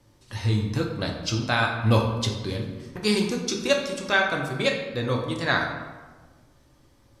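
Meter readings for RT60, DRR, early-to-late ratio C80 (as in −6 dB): 1.4 s, 0.0 dB, 7.0 dB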